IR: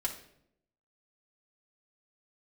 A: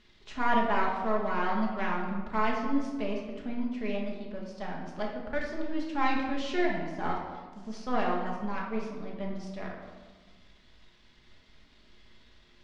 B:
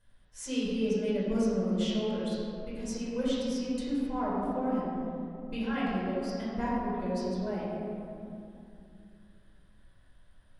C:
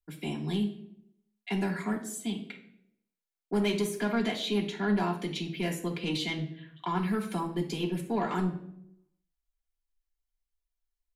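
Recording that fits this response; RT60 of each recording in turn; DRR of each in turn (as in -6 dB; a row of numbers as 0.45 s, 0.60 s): C; 1.4 s, 2.7 s, 0.70 s; -2.5 dB, -10.0 dB, -2.0 dB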